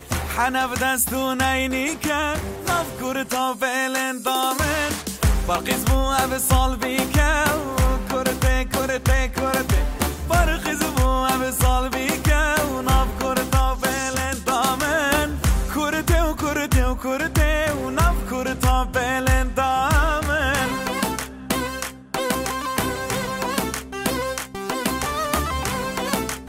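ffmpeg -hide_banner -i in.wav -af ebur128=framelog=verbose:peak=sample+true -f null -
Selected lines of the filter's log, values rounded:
Integrated loudness:
  I:         -21.7 LUFS
  Threshold: -31.7 LUFS
Loudness range:
  LRA:         3.9 LU
  Threshold: -41.6 LUFS
  LRA low:   -24.5 LUFS
  LRA high:  -20.5 LUFS
Sample peak:
  Peak:       -4.1 dBFS
True peak:
  Peak:       -4.0 dBFS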